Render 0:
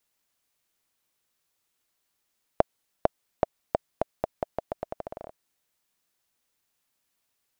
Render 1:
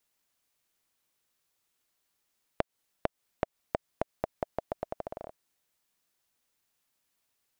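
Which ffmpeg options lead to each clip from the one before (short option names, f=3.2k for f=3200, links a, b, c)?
-af "acompressor=threshold=-25dB:ratio=10,volume=-1dB"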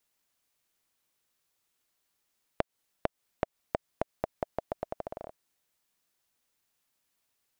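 -af anull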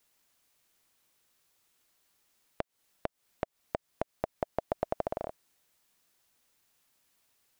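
-af "alimiter=limit=-19.5dB:level=0:latency=1:release=269,volume=6dB"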